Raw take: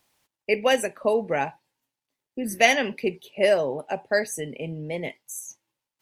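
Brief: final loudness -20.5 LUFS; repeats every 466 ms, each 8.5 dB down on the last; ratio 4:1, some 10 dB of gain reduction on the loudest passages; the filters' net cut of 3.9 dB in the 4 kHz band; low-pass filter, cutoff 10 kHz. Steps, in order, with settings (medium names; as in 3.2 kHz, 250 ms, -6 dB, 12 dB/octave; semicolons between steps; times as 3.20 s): low-pass 10 kHz; peaking EQ 4 kHz -6.5 dB; compression 4:1, threshold -26 dBFS; feedback delay 466 ms, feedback 38%, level -8.5 dB; trim +11.5 dB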